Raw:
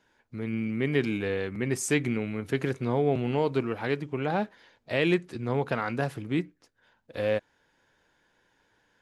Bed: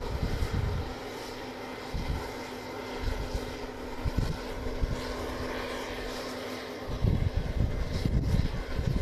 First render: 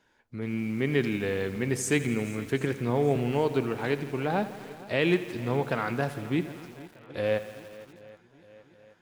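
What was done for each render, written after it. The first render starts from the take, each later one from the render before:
feedback echo with a long and a short gap by turns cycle 777 ms, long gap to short 1.5 to 1, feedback 47%, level −19.5 dB
feedback echo at a low word length 83 ms, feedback 80%, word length 7 bits, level −14.5 dB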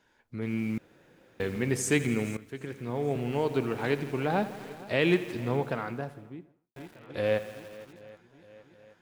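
0:00.78–0:01.40: fill with room tone
0:02.37–0:03.85: fade in, from −16.5 dB
0:05.22–0:06.76: fade out and dull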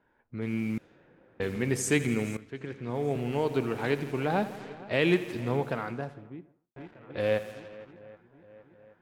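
low-pass that shuts in the quiet parts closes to 1,500 Hz, open at −28 dBFS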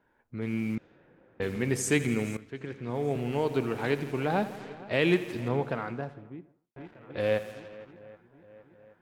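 0:00.75–0:01.42: high-frequency loss of the air 97 metres
0:05.48–0:06.85: high-shelf EQ 7,100 Hz −11.5 dB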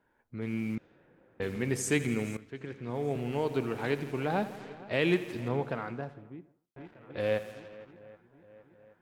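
level −2.5 dB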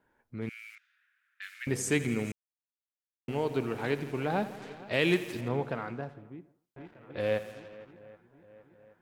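0:00.49–0:01.67: Butterworth high-pass 1,400 Hz 48 dB per octave
0:02.32–0:03.28: silence
0:04.62–0:05.41: high-shelf EQ 3,500 Hz +8 dB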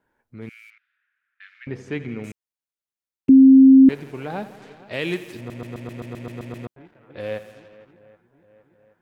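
0:00.70–0:02.24: high-frequency loss of the air 270 metres
0:03.29–0:03.89: beep over 266 Hz −6 dBFS
0:05.37: stutter in place 0.13 s, 10 plays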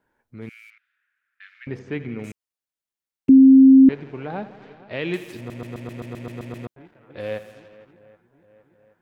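0:01.79–0:02.19: high-frequency loss of the air 130 metres
0:03.38–0:05.14: high-frequency loss of the air 200 metres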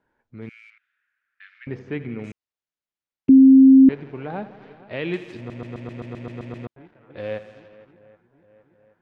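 high-frequency loss of the air 110 metres

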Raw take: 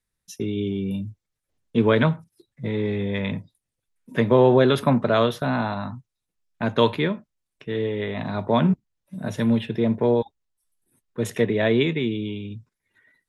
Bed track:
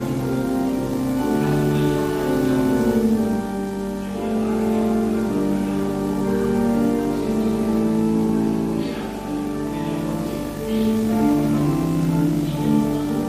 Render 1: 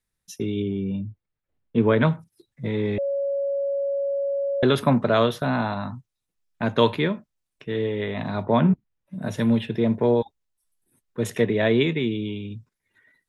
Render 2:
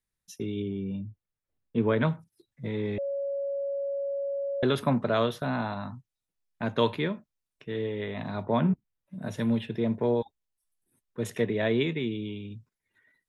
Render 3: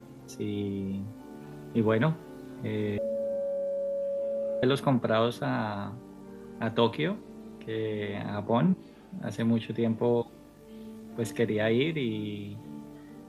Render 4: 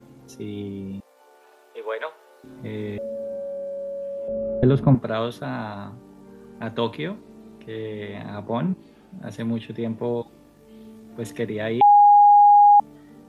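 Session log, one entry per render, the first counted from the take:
0:00.62–0:02.03: high-frequency loss of the air 320 metres; 0:02.98–0:04.63: beep over 558 Hz −22 dBFS; 0:08.43–0:09.22: bass and treble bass +1 dB, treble −12 dB
level −6 dB
mix in bed track −25 dB
0:01.00–0:02.44: Chebyshev high-pass filter 470 Hz, order 4; 0:04.28–0:04.95: spectral tilt −4.5 dB per octave; 0:11.81–0:12.80: beep over 822 Hz −9 dBFS

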